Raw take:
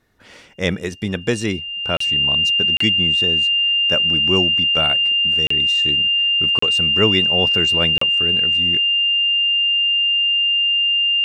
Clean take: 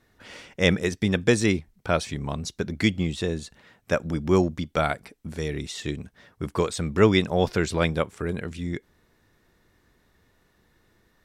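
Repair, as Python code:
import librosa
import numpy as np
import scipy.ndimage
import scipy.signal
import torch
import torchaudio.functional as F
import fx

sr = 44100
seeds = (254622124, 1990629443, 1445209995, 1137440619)

y = fx.notch(x, sr, hz=2800.0, q=30.0)
y = fx.fix_interpolate(y, sr, at_s=(1.97, 2.77, 5.47, 6.59, 7.98), length_ms=34.0)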